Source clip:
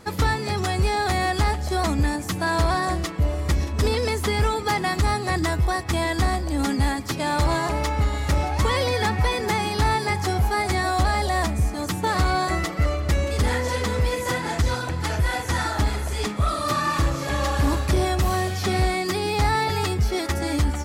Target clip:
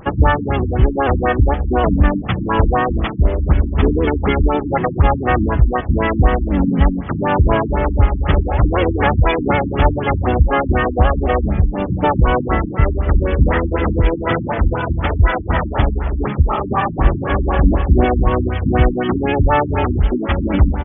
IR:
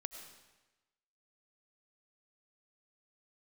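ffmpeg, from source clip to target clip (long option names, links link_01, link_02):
-filter_complex "[0:a]asplit=3[link_01][link_02][link_03];[link_02]asetrate=29433,aresample=44100,atempo=1.49831,volume=-1dB[link_04];[link_03]asetrate=37084,aresample=44100,atempo=1.18921,volume=-7dB[link_05];[link_01][link_04][link_05]amix=inputs=3:normalize=0,afftfilt=real='re*lt(b*sr/1024,310*pow(3600/310,0.5+0.5*sin(2*PI*4*pts/sr)))':imag='im*lt(b*sr/1024,310*pow(3600/310,0.5+0.5*sin(2*PI*4*pts/sr)))':win_size=1024:overlap=0.75,volume=5.5dB"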